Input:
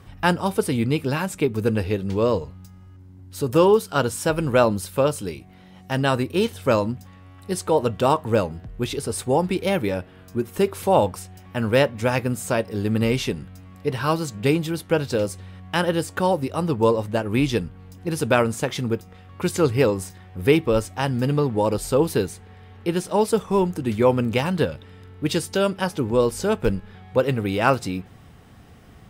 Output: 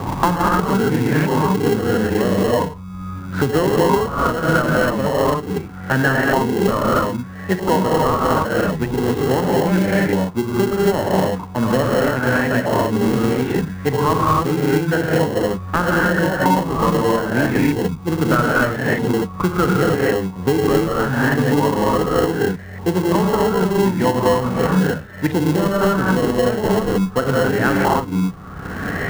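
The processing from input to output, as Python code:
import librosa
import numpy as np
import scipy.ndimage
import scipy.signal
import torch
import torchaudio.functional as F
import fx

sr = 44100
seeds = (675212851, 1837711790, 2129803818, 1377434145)

p1 = fx.dynamic_eq(x, sr, hz=220.0, q=0.74, threshold_db=-29.0, ratio=4.0, max_db=4)
p2 = fx.rev_gated(p1, sr, seeds[0], gate_ms=310, shape='rising', drr_db=-6.5)
p3 = fx.filter_lfo_lowpass(p2, sr, shape='saw_up', hz=0.79, low_hz=900.0, high_hz=1900.0, q=6.5)
p4 = fx.sample_hold(p3, sr, seeds[1], rate_hz=1200.0, jitter_pct=0)
p5 = p3 + F.gain(torch.from_numpy(p4), -5.0).numpy()
p6 = fx.band_squash(p5, sr, depth_pct=100)
y = F.gain(torch.from_numpy(p6), -10.0).numpy()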